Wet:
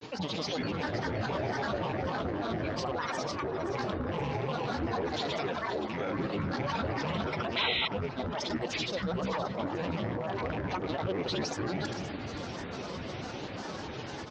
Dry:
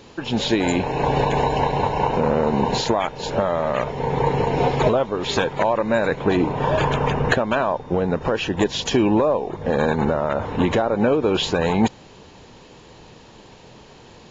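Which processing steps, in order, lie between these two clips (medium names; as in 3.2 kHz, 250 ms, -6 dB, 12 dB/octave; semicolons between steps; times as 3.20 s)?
rattle on loud lows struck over -27 dBFS, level -19 dBFS; high-pass 74 Hz; comb 6.5 ms, depth 57%; reverse; compression 6:1, threshold -32 dBFS, peak gain reduction 19.5 dB; reverse; peak limiter -29 dBFS, peak gain reduction 9 dB; granulator, pitch spread up and down by 12 st; steep low-pass 6.3 kHz 36 dB/octave; on a send: echo whose repeats swap between lows and highs 261 ms, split 1.1 kHz, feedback 63%, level -7 dB; on the sum: painted sound noise, 7.56–7.88 s, 1.9–4.1 kHz -36 dBFS; trim +5.5 dB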